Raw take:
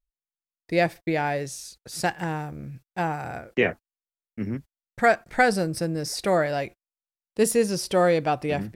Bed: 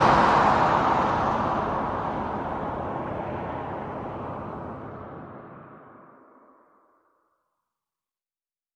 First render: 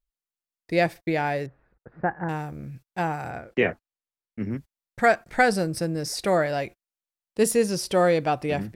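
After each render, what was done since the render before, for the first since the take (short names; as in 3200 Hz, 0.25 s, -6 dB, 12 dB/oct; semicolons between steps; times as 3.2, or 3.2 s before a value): 1.46–2.29 steep low-pass 1700 Hz; 3.3–4.51 high shelf 6000 Hz -9.5 dB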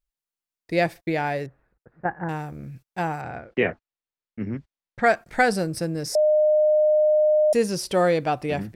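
1.44–2.05 fade out, to -10 dB; 3.21–5.06 LPF 4400 Hz; 6.15–7.53 bleep 610 Hz -15 dBFS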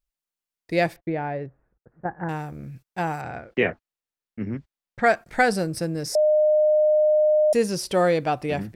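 0.96–2.19 tape spacing loss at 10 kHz 42 dB; 3.07–3.7 high shelf 3800 Hz +5 dB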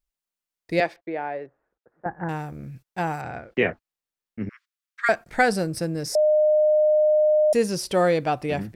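0.8–2.06 three-band isolator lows -19 dB, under 310 Hz, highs -18 dB, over 6100 Hz; 4.49–5.09 steep high-pass 1100 Hz 72 dB/oct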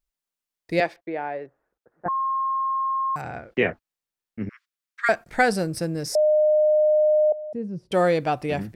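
2.08–3.16 bleep 1070 Hz -21.5 dBFS; 7.32–7.92 band-pass 140 Hz, Q 1.4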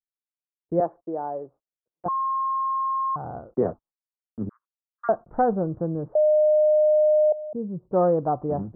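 steep low-pass 1200 Hz 48 dB/oct; gate -51 dBFS, range -31 dB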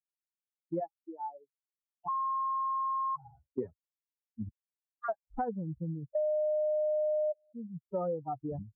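per-bin expansion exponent 3; compressor 3:1, threshold -33 dBFS, peak gain reduction 11.5 dB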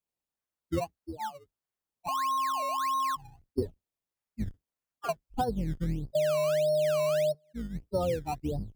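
octaver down 2 oct, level -2 dB; in parallel at -4.5 dB: decimation with a swept rate 18×, swing 100% 1.6 Hz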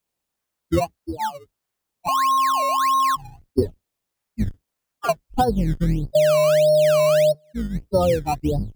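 gain +10.5 dB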